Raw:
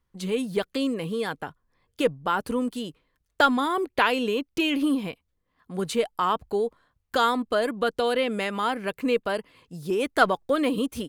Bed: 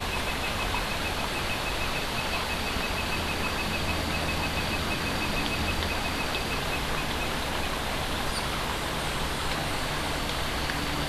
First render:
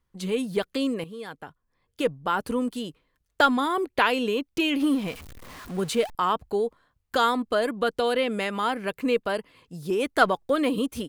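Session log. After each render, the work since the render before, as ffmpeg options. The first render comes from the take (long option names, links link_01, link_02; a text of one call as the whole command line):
ffmpeg -i in.wav -filter_complex "[0:a]asettb=1/sr,asplit=3[link_01][link_02][link_03];[link_01]atrim=end=4.804[link_04];[link_02]atrim=start=4.8:end=6.15,asetpts=PTS-STARTPTS,afade=type=in:duration=0.004:curve=qsin,afade=type=out:start_time=1.346:duration=0.004:curve=qsin,aeval=exprs='val(0)+0.5*0.0141*sgn(val(0))':channel_layout=same[link_05];[link_03]atrim=start=6.146[link_06];[link_04][link_05]acrossfade=duration=0.004:curve1=hsin:curve2=qsin[link_07];[link_07][link_06]acrossfade=duration=0.004:curve1=qsin:curve2=hsin,asplit=2[link_08][link_09];[link_08]atrim=end=1.04,asetpts=PTS-STARTPTS,afade=type=out:start_time=1.036:duration=0.004:curve=hsin:silence=0.251189[link_10];[link_09]atrim=start=1.04,asetpts=PTS-STARTPTS,afade=type=in:duration=1.37:silence=0.251189[link_11];[link_10][link_11]concat=n=2:v=0:a=1" out.wav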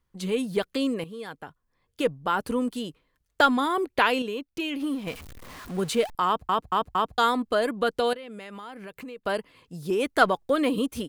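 ffmpeg -i in.wav -filter_complex "[0:a]asettb=1/sr,asplit=3[link_01][link_02][link_03];[link_01]atrim=end=8.134[link_04];[link_02]atrim=start=8.13:end=9.26,asetpts=PTS-STARTPTS,afade=type=in:duration=0.004:curve=qsin,afade=type=out:start_time=1.126:duration=0.004:curve=qsin,acompressor=threshold=-37dB:ratio=8:attack=3.2:release=140:knee=1:detection=peak[link_05];[link_03]atrim=start=9.256[link_06];[link_04][link_05]acrossfade=duration=0.004:curve1=hsin:curve2=qsin[link_07];[link_07][link_06]acrossfade=duration=0.004:curve1=qsin:curve2=hsin,asplit=7[link_08][link_09][link_10][link_11][link_12][link_13][link_14];[link_08]atrim=end=4.222[link_15];[link_09]atrim=start=4.218:end=5.072,asetpts=PTS-STARTPTS,volume=-6dB[link_16];[link_10]atrim=start=5.068:end=6.492[link_17];[link_11]atrim=start=6.258:end=6.492[link_18];[link_12]atrim=start=6.258:end=6.492[link_19];[link_13]atrim=start=6.258:end=6.492[link_20];[link_14]atrim=start=7.178[link_21];[link_15][link_16]acrossfade=duration=0.004:curve1=hsin:curve2=hsin[link_22];[link_22][link_17]acrossfade=duration=0.004:curve1=hsin:curve2=hsin[link_23];[link_23][link_18]acrossfade=duration=0.004:curve1=hsin:curve2=hsin[link_24];[link_24][link_19]acrossfade=duration=0.004:curve1=hsin:curve2=hsin[link_25];[link_25][link_20]acrossfade=duration=0.004:curve1=hsin:curve2=hsin[link_26];[link_26][link_21]acrossfade=duration=0.004:curve1=hsin:curve2=hsin" out.wav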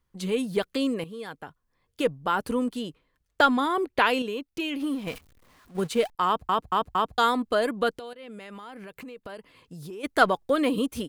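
ffmpeg -i in.wav -filter_complex "[0:a]asettb=1/sr,asplit=3[link_01][link_02][link_03];[link_01]atrim=end=2.644[link_04];[link_02]atrim=start=2.64:end=4.07,asetpts=PTS-STARTPTS,afade=type=in:duration=0.004:curve=qsin,afade=type=out:start_time=1.426:duration=0.004:curve=qsin,highshelf=frequency=6200:gain=-4.5[link_05];[link_03]atrim=start=4.066[link_06];[link_04][link_05]acrossfade=duration=0.004:curve1=hsin:curve2=qsin[link_07];[link_07][link_06]acrossfade=duration=0.004:curve1=qsin:curve2=hsin,asettb=1/sr,asplit=3[link_08][link_09][link_10];[link_08]atrim=end=5.184[link_11];[link_09]atrim=start=5.18:end=6.33,asetpts=PTS-STARTPTS,afade=type=in:duration=0.004:curve=qsin,afade=type=out:start_time=1.146:duration=0.004:curve=qsin,agate=range=-15dB:threshold=-31dB:ratio=16:release=100:detection=peak[link_12];[link_10]atrim=start=6.326[link_13];[link_11][link_12]acrossfade=duration=0.004:curve1=hsin:curve2=qsin[link_14];[link_14][link_13]acrossfade=duration=0.004:curve1=qsin:curve2=hsin,asplit=3[link_15][link_16][link_17];[link_15]afade=type=out:start_time=7.96:duration=0.02[link_18];[link_16]acompressor=threshold=-37dB:ratio=6:attack=3.2:release=140:knee=1:detection=peak,afade=type=in:start_time=7.96:duration=0.02,afade=type=out:start_time=10.03:duration=0.02[link_19];[link_17]afade=type=in:start_time=10.03:duration=0.02[link_20];[link_18][link_19][link_20]amix=inputs=3:normalize=0" out.wav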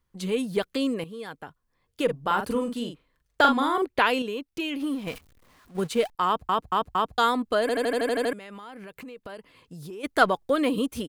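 ffmpeg -i in.wav -filter_complex "[0:a]asplit=3[link_01][link_02][link_03];[link_01]afade=type=out:start_time=2.08:duration=0.02[link_04];[link_02]asplit=2[link_05][link_06];[link_06]adelay=42,volume=-5.5dB[link_07];[link_05][link_07]amix=inputs=2:normalize=0,afade=type=in:start_time=2.08:duration=0.02,afade=type=out:start_time=3.84:duration=0.02[link_08];[link_03]afade=type=in:start_time=3.84:duration=0.02[link_09];[link_04][link_08][link_09]amix=inputs=3:normalize=0,asplit=10[link_10][link_11][link_12][link_13][link_14][link_15][link_16][link_17][link_18][link_19];[link_10]atrim=end=7.692[link_20];[link_11]atrim=start=7.608:end=7.692[link_21];[link_12]atrim=start=7.608:end=7.692[link_22];[link_13]atrim=start=7.608:end=7.692[link_23];[link_14]atrim=start=7.608:end=7.692[link_24];[link_15]atrim=start=7.608:end=7.692[link_25];[link_16]atrim=start=7.608:end=7.692[link_26];[link_17]atrim=start=7.608:end=7.692[link_27];[link_18]atrim=start=7.608:end=7.692[link_28];[link_19]atrim=start=8.328[link_29];[link_20][link_21]acrossfade=duration=0.004:curve1=hsin:curve2=hsin[link_30];[link_30][link_22]acrossfade=duration=0.004:curve1=hsin:curve2=hsin[link_31];[link_31][link_23]acrossfade=duration=0.004:curve1=hsin:curve2=hsin[link_32];[link_32][link_24]acrossfade=duration=0.004:curve1=hsin:curve2=hsin[link_33];[link_33][link_25]acrossfade=duration=0.004:curve1=hsin:curve2=hsin[link_34];[link_34][link_26]acrossfade=duration=0.004:curve1=hsin:curve2=hsin[link_35];[link_35][link_27]acrossfade=duration=0.004:curve1=hsin:curve2=hsin[link_36];[link_36][link_28]acrossfade=duration=0.004:curve1=hsin:curve2=hsin[link_37];[link_37][link_29]acrossfade=duration=0.004:curve1=hsin:curve2=hsin" out.wav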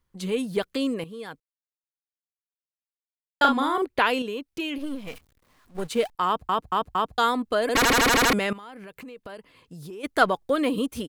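ffmpeg -i in.wav -filter_complex "[0:a]asettb=1/sr,asplit=3[link_01][link_02][link_03];[link_01]atrim=end=4.784[link_04];[link_02]atrim=start=4.78:end=5.88,asetpts=PTS-STARTPTS,afade=type=in:duration=0.004:curve=qsin,afade=type=out:start_time=1.096:duration=0.004:curve=qsin,aeval=exprs='if(lt(val(0),0),0.251*val(0),val(0))':channel_layout=same[link_05];[link_03]atrim=start=5.876[link_06];[link_04][link_05]acrossfade=duration=0.004:curve1=hsin:curve2=qsin[link_07];[link_07][link_06]acrossfade=duration=0.004:curve1=qsin:curve2=hsin,asettb=1/sr,asplit=3[link_08][link_09][link_10];[link_08]atrim=end=7.754[link_11];[link_09]atrim=start=7.75:end=8.53,asetpts=PTS-STARTPTS,afade=type=in:duration=0.004:curve=qsin,afade=type=out:start_time=0.776:duration=0.004:curve=qsin,aeval=exprs='0.15*sin(PI/2*5.01*val(0)/0.15)':channel_layout=same[link_12];[link_10]atrim=start=8.526[link_13];[link_11][link_12]acrossfade=duration=0.004:curve1=hsin:curve2=qsin[link_14];[link_14][link_13]acrossfade=duration=0.004:curve1=qsin:curve2=hsin,asplit=3[link_15][link_16][link_17];[link_15]atrim=end=1.4,asetpts=PTS-STARTPTS,afade=type=out:start_time=1.396:duration=0.004:curve=hsin[link_18];[link_16]atrim=start=1.4:end=3.41,asetpts=PTS-STARTPTS,volume=0[link_19];[link_17]atrim=start=3.41,asetpts=PTS-STARTPTS,afade=type=in:duration=0.004:curve=hsin[link_20];[link_18][link_19][link_20]concat=n=3:v=0:a=1" out.wav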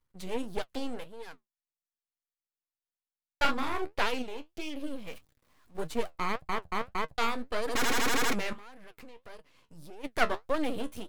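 ffmpeg -i in.wav -af "aeval=exprs='max(val(0),0)':channel_layout=same,flanger=delay=6.3:depth=7.4:regen=56:speed=1.7:shape=sinusoidal" out.wav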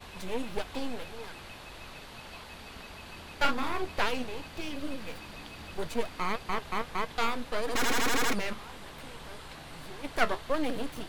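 ffmpeg -i in.wav -i bed.wav -filter_complex "[1:a]volume=-16.5dB[link_01];[0:a][link_01]amix=inputs=2:normalize=0" out.wav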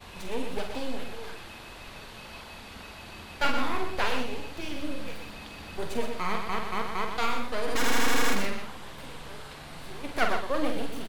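ffmpeg -i in.wav -filter_complex "[0:a]asplit=2[link_01][link_02];[link_02]adelay=46,volume=-7dB[link_03];[link_01][link_03]amix=inputs=2:normalize=0,aecho=1:1:55.39|122.4:0.251|0.447" out.wav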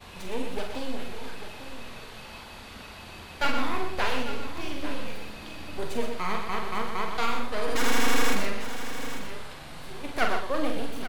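ffmpeg -i in.wav -filter_complex "[0:a]asplit=2[link_01][link_02];[link_02]adelay=38,volume=-11dB[link_03];[link_01][link_03]amix=inputs=2:normalize=0,aecho=1:1:846:0.266" out.wav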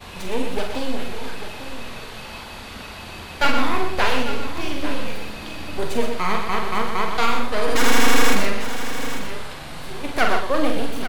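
ffmpeg -i in.wav -af "volume=7.5dB,alimiter=limit=-2dB:level=0:latency=1" out.wav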